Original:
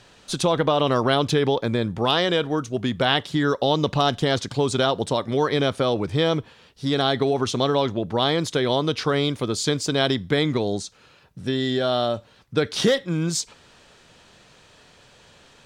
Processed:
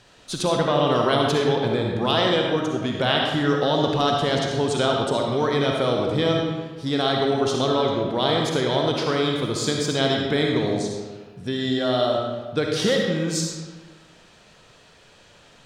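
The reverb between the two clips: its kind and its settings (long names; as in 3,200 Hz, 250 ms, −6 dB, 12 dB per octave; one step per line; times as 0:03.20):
comb and all-pass reverb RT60 1.4 s, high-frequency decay 0.7×, pre-delay 20 ms, DRR 0 dB
level −2.5 dB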